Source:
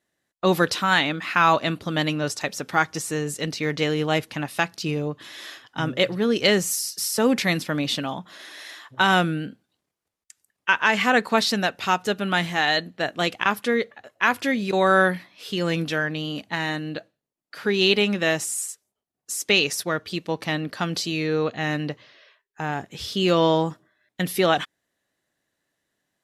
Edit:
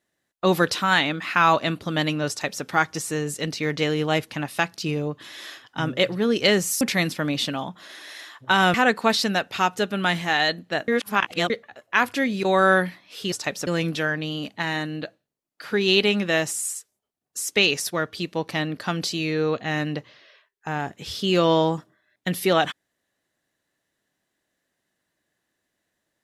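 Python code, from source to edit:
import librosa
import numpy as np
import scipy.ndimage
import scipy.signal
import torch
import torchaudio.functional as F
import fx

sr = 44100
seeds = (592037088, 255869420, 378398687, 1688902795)

y = fx.edit(x, sr, fx.duplicate(start_s=2.29, length_s=0.35, to_s=15.6),
    fx.cut(start_s=6.81, length_s=0.5),
    fx.cut(start_s=9.24, length_s=1.78),
    fx.reverse_span(start_s=13.16, length_s=0.62), tone=tone)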